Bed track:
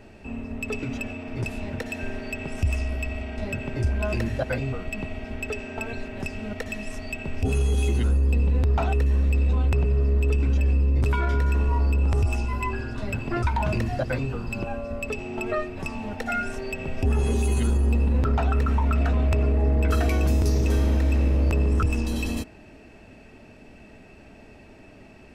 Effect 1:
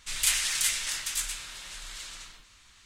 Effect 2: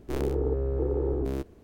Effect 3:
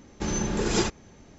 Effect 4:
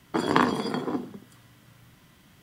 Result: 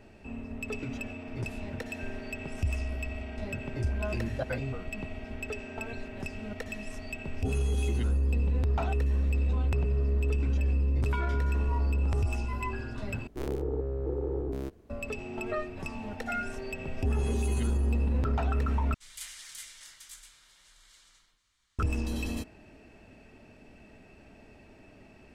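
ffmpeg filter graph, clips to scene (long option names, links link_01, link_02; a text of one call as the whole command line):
ffmpeg -i bed.wav -i cue0.wav -i cue1.wav -filter_complex "[0:a]volume=-6dB[link_01];[1:a]bandreject=frequency=2600:width=10[link_02];[link_01]asplit=3[link_03][link_04][link_05];[link_03]atrim=end=13.274[link_06];[2:a]atrim=end=1.63,asetpts=PTS-STARTPTS,volume=-4.5dB[link_07];[link_04]atrim=start=14.896:end=18.944[link_08];[link_02]atrim=end=2.85,asetpts=PTS-STARTPTS,volume=-17.5dB[link_09];[link_05]atrim=start=21.786[link_10];[link_06][link_07]acrossfade=duration=0.004:curve1=hsin:curve2=hsin[link_11];[link_11][link_08]acrossfade=duration=0.004:curve1=hsin:curve2=hsin[link_12];[link_12][link_09]acrossfade=duration=0.004:curve1=hsin:curve2=hsin[link_13];[link_13][link_10]acrossfade=duration=0.004:curve1=hsin:curve2=hsin" out.wav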